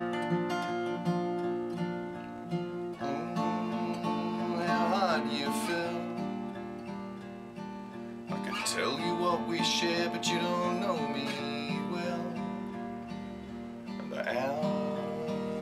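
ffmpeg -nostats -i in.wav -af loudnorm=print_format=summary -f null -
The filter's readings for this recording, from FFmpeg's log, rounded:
Input Integrated:    -33.4 LUFS
Input True Peak:     -14.3 dBTP
Input LRA:             4.8 LU
Input Threshold:     -43.5 LUFS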